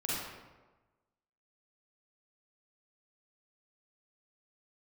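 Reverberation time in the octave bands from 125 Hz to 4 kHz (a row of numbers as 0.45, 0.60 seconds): 1.3, 1.2, 1.2, 1.2, 0.95, 0.75 seconds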